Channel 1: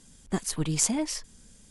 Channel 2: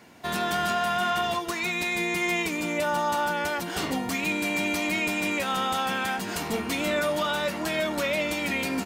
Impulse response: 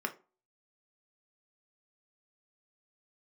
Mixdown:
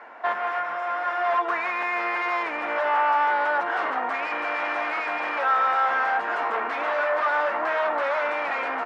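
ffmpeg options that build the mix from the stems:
-filter_complex "[0:a]acrossover=split=140[s0][s1];[s1]acompressor=threshold=0.0158:ratio=6[s2];[s0][s2]amix=inputs=2:normalize=0,volume=0.841,asplit=2[s3][s4];[1:a]aeval=exprs='0.126*sin(PI/2*2.51*val(0)/0.126)':c=same,volume=0.891,asplit=2[s5][s6];[s6]volume=0.299[s7];[s4]apad=whole_len=390285[s8];[s5][s8]sidechaincompress=threshold=0.00562:ratio=8:attack=30:release=188[s9];[2:a]atrim=start_sample=2205[s10];[s7][s10]afir=irnorm=-1:irlink=0[s11];[s3][s9][s11]amix=inputs=3:normalize=0,asuperpass=centerf=1000:order=4:qfactor=0.93"

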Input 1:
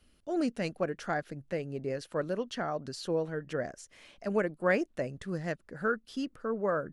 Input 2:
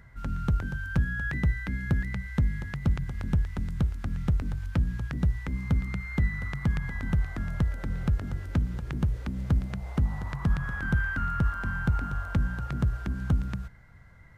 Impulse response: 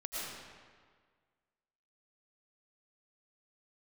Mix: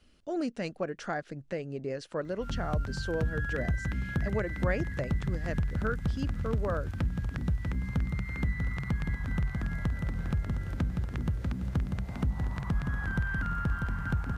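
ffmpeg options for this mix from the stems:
-filter_complex "[0:a]lowpass=f=8400:w=0.5412,lowpass=f=8400:w=1.3066,volume=1.33[s0];[1:a]adelay=2250,volume=1.12,asplit=2[s1][s2];[s2]volume=0.562,aecho=0:1:643|1286|1929|2572|3215:1|0.36|0.13|0.0467|0.0168[s3];[s0][s1][s3]amix=inputs=3:normalize=0,acompressor=threshold=0.0158:ratio=1.5"

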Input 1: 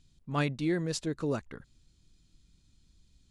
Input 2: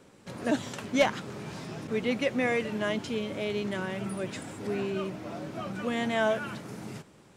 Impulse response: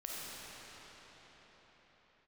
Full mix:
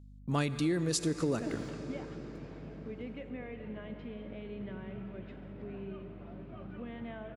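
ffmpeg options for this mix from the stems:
-filter_complex "[0:a]agate=range=0.0562:threshold=0.00178:ratio=16:detection=peak,highpass=f=250:p=1,aemphasis=mode=production:type=50kf,volume=1.26,asplit=3[s0][s1][s2];[s1]volume=0.211[s3];[1:a]lowpass=f=3200:w=0.5412,lowpass=f=3200:w=1.3066,acompressor=threshold=0.0398:ratio=6,adelay=950,volume=0.266,asplit=2[s4][s5];[s5]volume=0.237[s6];[s2]apad=whole_len=366501[s7];[s4][s7]sidechaingate=range=0.447:threshold=0.001:ratio=16:detection=peak[s8];[2:a]atrim=start_sample=2205[s9];[s3][s6]amix=inputs=2:normalize=0[s10];[s10][s9]afir=irnorm=-1:irlink=0[s11];[s0][s8][s11]amix=inputs=3:normalize=0,lowshelf=f=350:g=10,aeval=exprs='val(0)+0.00282*(sin(2*PI*50*n/s)+sin(2*PI*2*50*n/s)/2+sin(2*PI*3*50*n/s)/3+sin(2*PI*4*50*n/s)/4+sin(2*PI*5*50*n/s)/5)':c=same,acompressor=threshold=0.0398:ratio=4"

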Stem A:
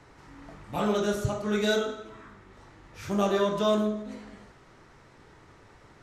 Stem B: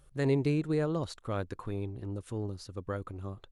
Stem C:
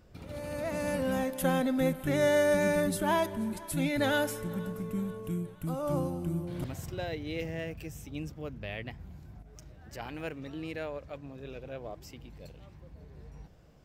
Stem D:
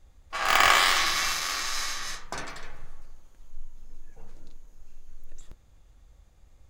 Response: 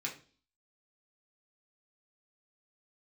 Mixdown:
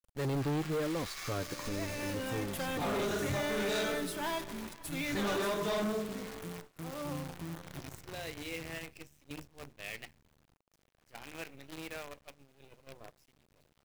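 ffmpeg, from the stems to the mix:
-filter_complex "[0:a]flanger=delay=19.5:depth=4.7:speed=2.5,adelay=2050,volume=0.794,asplit=2[s0][s1];[s1]volume=0.473[s2];[1:a]flanger=delay=3.5:depth=3.6:regen=24:speed=1.1:shape=sinusoidal,volume=1.33,asplit=2[s3][s4];[2:a]bandreject=f=50:t=h:w=6,bandreject=f=100:t=h:w=6,bandreject=f=150:t=h:w=6,bandreject=f=200:t=h:w=6,bandreject=f=250:t=h:w=6,bandreject=f=300:t=h:w=6,bandreject=f=350:t=h:w=6,adynamicequalizer=threshold=0.00355:dfrequency=2800:dqfactor=0.79:tfrequency=2800:tqfactor=0.79:attack=5:release=100:ratio=0.375:range=4:mode=boostabove:tftype=bell,asoftclip=type=tanh:threshold=0.106,adelay=1150,volume=0.335,asplit=2[s5][s6];[s6]volume=0.422[s7];[3:a]alimiter=limit=0.15:level=0:latency=1:release=118,volume=0.158,asplit=2[s8][s9];[s9]volume=0.376[s10];[s4]apad=whole_len=295174[s11];[s8][s11]sidechaincompress=threshold=0.0158:ratio=8:attack=16:release=641[s12];[4:a]atrim=start_sample=2205[s13];[s2][s7][s10]amix=inputs=3:normalize=0[s14];[s14][s13]afir=irnorm=-1:irlink=0[s15];[s0][s3][s5][s12][s15]amix=inputs=5:normalize=0,agate=range=0.316:threshold=0.00355:ratio=16:detection=peak,asoftclip=type=hard:threshold=0.0316,acrusher=bits=8:dc=4:mix=0:aa=0.000001"

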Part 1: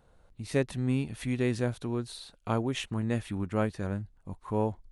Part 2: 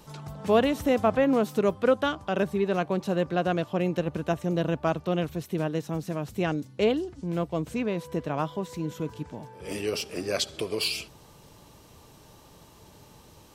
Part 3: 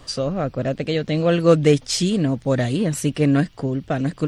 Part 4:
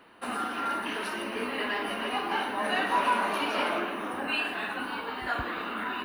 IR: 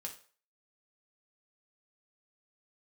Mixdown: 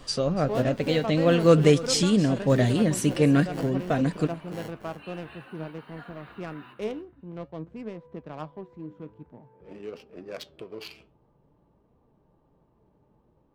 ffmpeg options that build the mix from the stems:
-filter_complex "[0:a]acrusher=samples=36:mix=1:aa=0.000001,volume=0.376,asplit=3[s0][s1][s2];[s1]volume=0.316[s3];[1:a]adynamicsmooth=sensitivity=2.5:basefreq=860,volume=0.596[s4];[2:a]volume=1.33,asplit=2[s5][s6];[s6]volume=0.119[s7];[3:a]adelay=700,volume=0.251,asplit=2[s8][s9];[s9]volume=0.376[s10];[s2]apad=whole_len=297599[s11];[s8][s11]sidechaincompress=threshold=0.00224:ratio=8:attack=8.4:release=314[s12];[s3][s7][s10]amix=inputs=3:normalize=0,aecho=0:1:287|574|861:1|0.15|0.0225[s13];[s0][s4][s5][s12][s13]amix=inputs=5:normalize=0,equalizer=f=95:w=5:g=-11.5,flanger=delay=3.7:depth=6.7:regen=78:speed=0.5:shape=triangular"

